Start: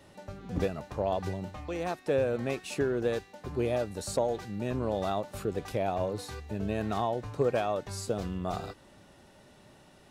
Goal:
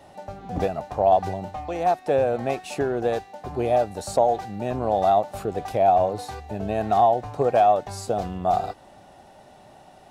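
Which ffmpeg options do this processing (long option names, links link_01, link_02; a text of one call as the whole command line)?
ffmpeg -i in.wav -af "equalizer=frequency=740:width_type=o:width=0.52:gain=15,volume=2.5dB" out.wav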